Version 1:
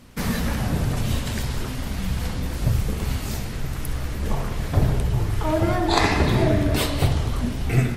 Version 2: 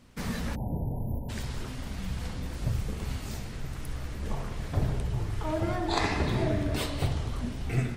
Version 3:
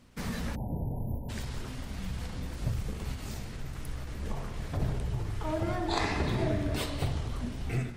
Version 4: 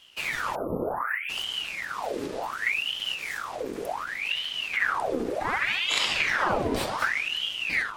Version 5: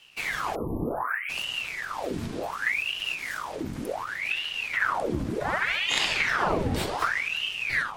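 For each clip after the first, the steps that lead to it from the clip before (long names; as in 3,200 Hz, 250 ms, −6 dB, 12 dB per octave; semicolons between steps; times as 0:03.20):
time-frequency box erased 0:00.55–0:01.29, 1,000–11,000 Hz; parametric band 12,000 Hz −10 dB 0.25 octaves; level −8.5 dB
every ending faded ahead of time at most 100 dB per second; level −1.5 dB
ring modulator whose carrier an LFO sweeps 1,700 Hz, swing 80%, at 0.67 Hz; level +6.5 dB
frequency shifter −180 Hz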